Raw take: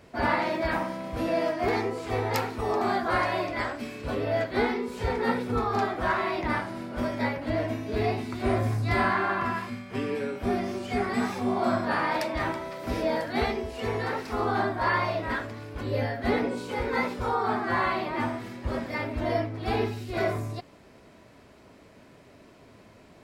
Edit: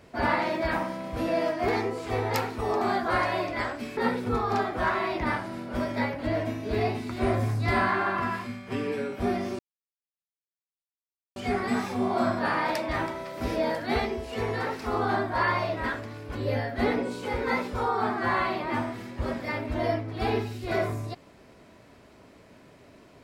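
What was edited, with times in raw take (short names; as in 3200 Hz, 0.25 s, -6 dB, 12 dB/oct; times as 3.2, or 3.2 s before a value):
3.97–5.2 cut
10.82 insert silence 1.77 s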